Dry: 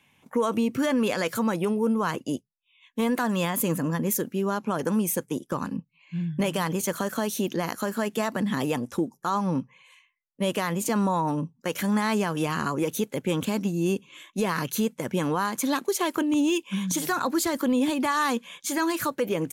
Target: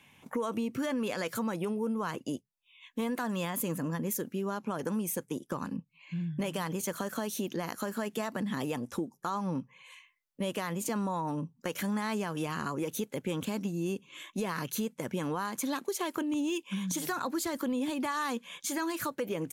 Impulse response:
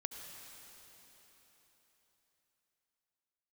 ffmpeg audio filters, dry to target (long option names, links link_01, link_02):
-af "acompressor=threshold=-42dB:ratio=2,volume=3dB"